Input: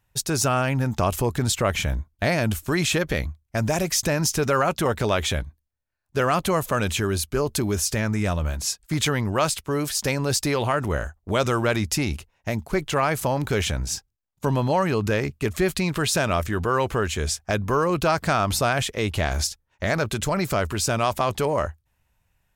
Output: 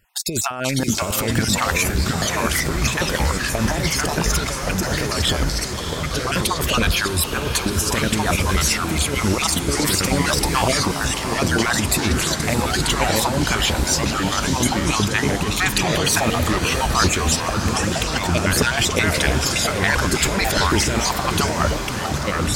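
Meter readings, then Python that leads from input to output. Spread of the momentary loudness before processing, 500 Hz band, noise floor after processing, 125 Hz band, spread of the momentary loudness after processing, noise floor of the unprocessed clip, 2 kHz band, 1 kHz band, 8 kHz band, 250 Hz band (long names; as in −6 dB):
6 LU, 0.0 dB, −26 dBFS, +3.0 dB, 4 LU, −72 dBFS, +7.0 dB, +3.5 dB, +7.0 dB, +4.0 dB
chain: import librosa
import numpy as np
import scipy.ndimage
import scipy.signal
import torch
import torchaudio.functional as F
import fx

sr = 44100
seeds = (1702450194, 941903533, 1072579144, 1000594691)

y = fx.spec_dropout(x, sr, seeds[0], share_pct=35)
y = fx.peak_eq(y, sr, hz=120.0, db=-8.5, octaves=0.48)
y = fx.over_compress(y, sr, threshold_db=-28.0, ratio=-0.5)
y = fx.echo_pitch(y, sr, ms=453, semitones=-3, count=3, db_per_echo=-3.0)
y = fx.echo_diffused(y, sr, ms=649, feedback_pct=66, wet_db=-9.0)
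y = y * 10.0 ** (7.0 / 20.0)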